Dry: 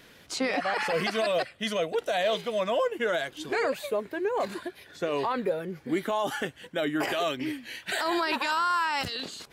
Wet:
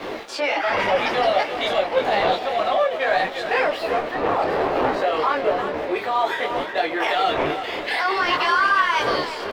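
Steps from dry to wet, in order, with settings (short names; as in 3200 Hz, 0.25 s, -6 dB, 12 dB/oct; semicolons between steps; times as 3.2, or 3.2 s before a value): zero-crossing step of -41 dBFS; wind noise 330 Hz -26 dBFS; high shelf 11000 Hz +4.5 dB; diffused feedback echo 1.084 s, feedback 41%, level -16 dB; pitch shift +2 st; sample leveller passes 3; three-band isolator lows -23 dB, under 400 Hz, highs -19 dB, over 4300 Hz; speakerphone echo 0.35 s, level -8 dB; detuned doubles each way 20 cents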